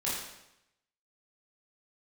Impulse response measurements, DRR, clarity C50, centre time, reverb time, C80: -8.0 dB, 0.5 dB, 66 ms, 0.85 s, 4.0 dB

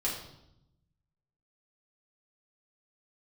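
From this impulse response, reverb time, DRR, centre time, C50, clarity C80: 0.80 s, -5.5 dB, 37 ms, 5.0 dB, 7.5 dB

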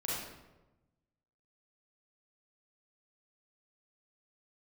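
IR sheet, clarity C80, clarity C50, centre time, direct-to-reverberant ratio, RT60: 1.5 dB, -2.5 dB, 83 ms, -7.0 dB, 1.1 s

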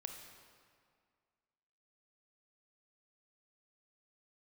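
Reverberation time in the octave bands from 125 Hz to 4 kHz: 2.0, 2.1, 2.0, 2.1, 1.8, 1.5 s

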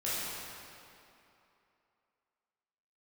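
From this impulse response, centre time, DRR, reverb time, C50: 0.186 s, -10.5 dB, 2.8 s, -4.5 dB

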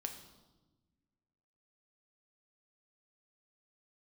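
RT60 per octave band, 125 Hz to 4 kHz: 2.0, 1.9, 1.3, 1.1, 0.80, 0.95 s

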